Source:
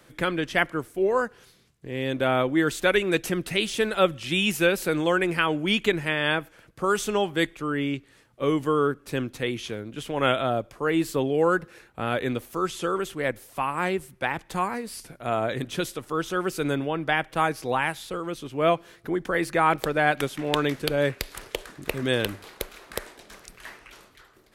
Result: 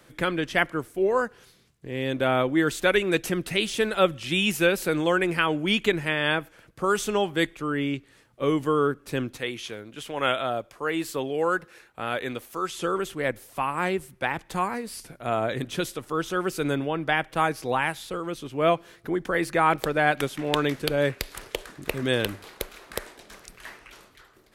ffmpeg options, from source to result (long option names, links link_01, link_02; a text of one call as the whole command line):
ffmpeg -i in.wav -filter_complex "[0:a]asettb=1/sr,asplit=3[link_01][link_02][link_03];[link_01]atrim=end=9.374[link_04];[link_02]atrim=start=9.37:end=12.78,asetpts=PTS-STARTPTS,afade=type=in:duration=0.004:curve=qsin,afade=type=out:start_time=3.406:duration=0.004:curve=qsin,lowshelf=frequency=390:gain=-9[link_05];[link_03]atrim=start=12.776[link_06];[link_04][link_05]acrossfade=duration=0.004:curve1=hsin:curve2=qsin[link_07];[link_07][link_06]acrossfade=duration=0.004:curve1=qsin:curve2=hsin" out.wav